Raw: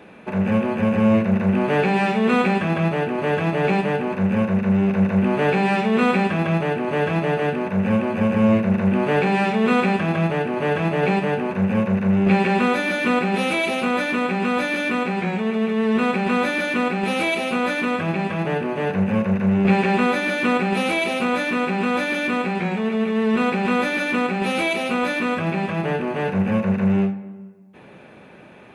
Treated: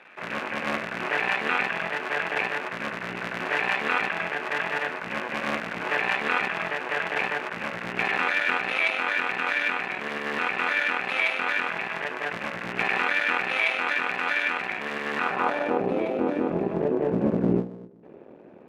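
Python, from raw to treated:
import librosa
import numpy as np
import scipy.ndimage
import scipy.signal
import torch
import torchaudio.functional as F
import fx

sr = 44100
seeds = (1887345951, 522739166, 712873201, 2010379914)

y = fx.cycle_switch(x, sr, every=3, mode='muted')
y = fx.filter_sweep_bandpass(y, sr, from_hz=1900.0, to_hz=360.0, start_s=23.32, end_s=24.51, q=1.4)
y = fx.stretch_grains(y, sr, factor=0.65, grain_ms=50.0)
y = F.gain(torch.from_numpy(y), 5.0).numpy()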